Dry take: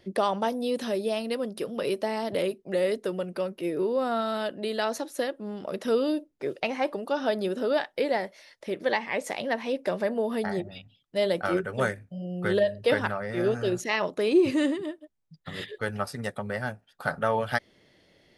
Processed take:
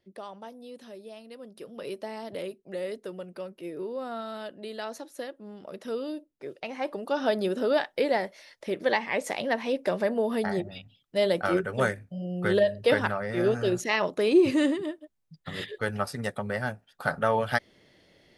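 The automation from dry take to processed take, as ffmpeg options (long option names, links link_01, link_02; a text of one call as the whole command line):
ffmpeg -i in.wav -af "volume=1dB,afade=type=in:start_time=1.31:duration=0.6:silence=0.398107,afade=type=in:start_time=6.65:duration=0.6:silence=0.354813" out.wav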